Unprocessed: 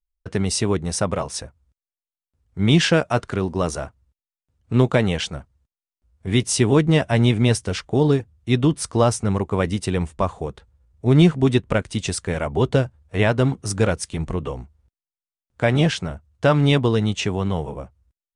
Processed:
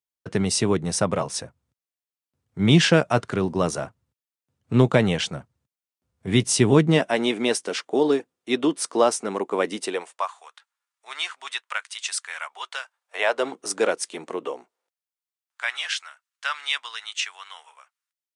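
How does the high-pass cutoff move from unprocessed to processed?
high-pass 24 dB/octave
6.74 s 110 Hz
7.17 s 280 Hz
9.84 s 280 Hz
10.34 s 1.1 kHz
12.84 s 1.1 kHz
13.58 s 320 Hz
14.50 s 320 Hz
15.78 s 1.3 kHz

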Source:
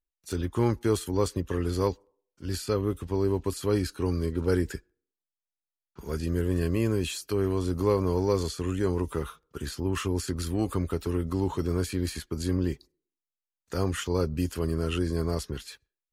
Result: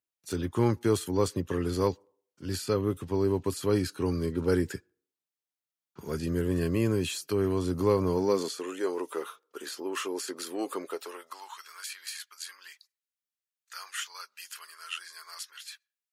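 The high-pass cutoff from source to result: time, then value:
high-pass 24 dB/octave
8.09 s 94 Hz
8.65 s 350 Hz
10.83 s 350 Hz
11.63 s 1.3 kHz

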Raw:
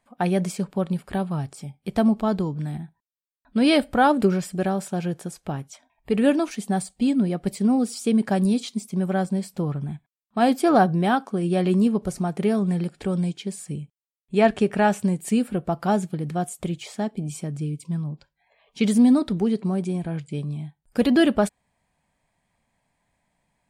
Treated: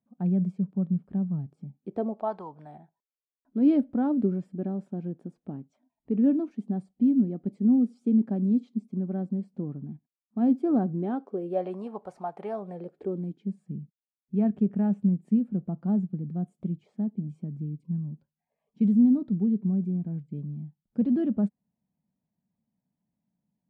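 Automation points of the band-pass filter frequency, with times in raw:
band-pass filter, Q 2.7
1.68 s 190 Hz
2.36 s 950 Hz
3.83 s 250 Hz
10.92 s 250 Hz
11.83 s 820 Hz
12.51 s 820 Hz
13.50 s 200 Hz

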